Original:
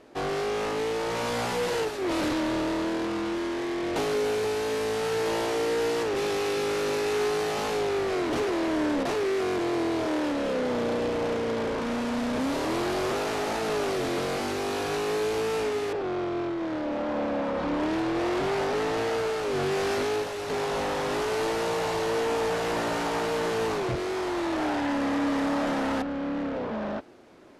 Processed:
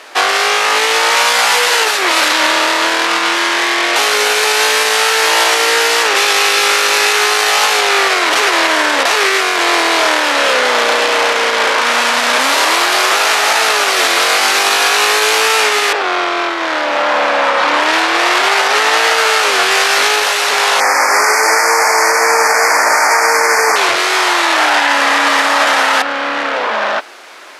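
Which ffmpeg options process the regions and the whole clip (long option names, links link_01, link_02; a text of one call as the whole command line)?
ffmpeg -i in.wav -filter_complex "[0:a]asettb=1/sr,asplit=3[link_01][link_02][link_03];[link_01]atrim=end=20.804[link_04];[link_02]atrim=start=20.8:end=23.76,asetpts=PTS-STARTPTS,afade=type=in:duration=0.004:curve=qsin,afade=type=out:start_time=2.956:duration=0.004:curve=qsin,asuperstop=centerf=3300:order=12:qfactor=1.5,aecho=1:1:96:0.596,atrim=end_sample=130536[link_05];[link_03]atrim=start=23.756[link_06];[link_04][link_05]acrossfade=duration=0.004:curve1=hsin:curve2=qsin[link_07];[link_07][link_06]acrossfade=duration=0.004:curve1=qsin:curve2=hsin,highpass=1200,alimiter=level_in=27.5dB:limit=-1dB:release=50:level=0:latency=1,volume=-1dB" out.wav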